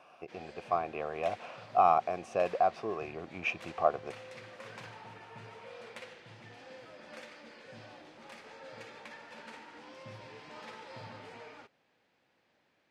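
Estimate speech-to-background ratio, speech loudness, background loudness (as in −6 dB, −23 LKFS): 18.0 dB, −32.0 LKFS, −50.0 LKFS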